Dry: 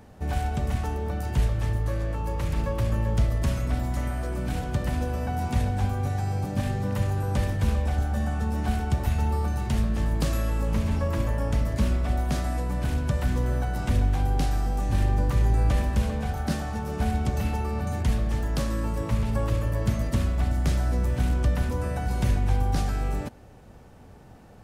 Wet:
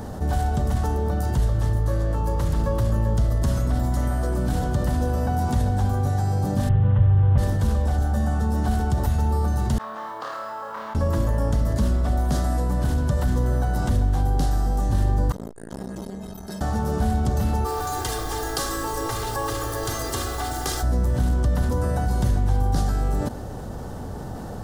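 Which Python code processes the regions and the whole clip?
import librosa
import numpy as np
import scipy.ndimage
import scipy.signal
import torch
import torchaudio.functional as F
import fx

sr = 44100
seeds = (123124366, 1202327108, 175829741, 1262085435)

y = fx.chain(x, sr, fx.cvsd(bps=16000),
    fx.low_shelf_res(hz=160.0, db=9.5, q=1.5), at=(6.69, 7.38))
y = fx.chain(y, sr, fx.ladder_bandpass(hz=1300.0, resonance_pct=45),
    fx.mod_noise(seeds[0], snr_db=32),
    fx.room_flutter(wall_m=4.7, rt60_s=0.55), at=(9.78, 10.95))
y = fx.chain(y, sr, fx.stiff_resonator(f0_hz=190.0, decay_s=0.67, stiffness=0.03),
    fx.transformer_sat(knee_hz=540.0), at=(15.32, 16.61))
y = fx.highpass(y, sr, hz=1000.0, slope=6, at=(17.64, 20.82), fade=0.02)
y = fx.dmg_noise_colour(y, sr, seeds[1], colour='pink', level_db=-50.0, at=(17.64, 20.82), fade=0.02)
y = fx.comb(y, sr, ms=2.5, depth=1.0, at=(17.64, 20.82), fade=0.02)
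y = fx.peak_eq(y, sr, hz=2400.0, db=-13.5, octaves=0.62)
y = fx.env_flatten(y, sr, amount_pct=50)
y = F.gain(torch.from_numpy(y), -3.0).numpy()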